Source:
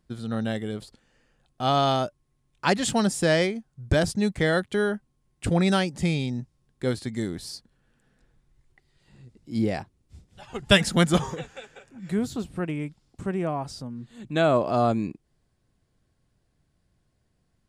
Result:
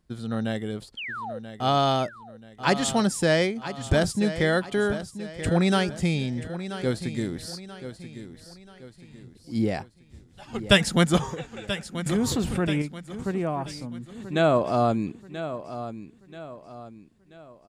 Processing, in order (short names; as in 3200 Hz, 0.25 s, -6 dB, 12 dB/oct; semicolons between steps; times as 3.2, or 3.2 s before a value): 0.97–1.39 painted sound fall 450–3300 Hz -34 dBFS; feedback echo 0.983 s, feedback 40%, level -12 dB; 12.06–12.82 fast leveller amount 70%